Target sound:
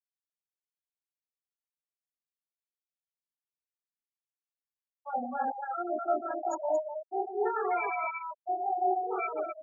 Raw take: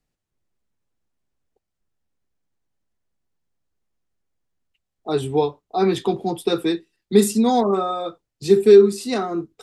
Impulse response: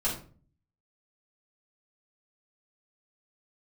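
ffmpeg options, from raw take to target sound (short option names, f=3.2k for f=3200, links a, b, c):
-filter_complex "[0:a]adynamicsmooth=sensitivity=1.5:basefreq=2k,lowshelf=f=91:g=-4.5,bandreject=f=50:t=h:w=6,bandreject=f=100:t=h:w=6,bandreject=f=150:t=h:w=6,bandreject=f=200:t=h:w=6,bandreject=f=250:t=h:w=6,bandreject=f=300:t=h:w=6,bandreject=f=350:t=h:w=6,aeval=exprs='val(0)*gte(abs(val(0)),0.0266)':c=same,lowpass=f=5k:t=q:w=2.7,areverse,acompressor=threshold=-25dB:ratio=5,areverse,asetrate=80880,aresample=44100,atempo=0.545254,asplit=2[a][b];[b]aecho=0:1:29.15|131.2|250.7:0.891|0.355|0.794[c];[a][c]amix=inputs=2:normalize=0,flanger=delay=16:depth=3.4:speed=0.66,afftfilt=real='re*gte(hypot(re,im),0.0891)':imag='im*gte(hypot(re,im),0.0891)':win_size=1024:overlap=0.75,volume=-4dB"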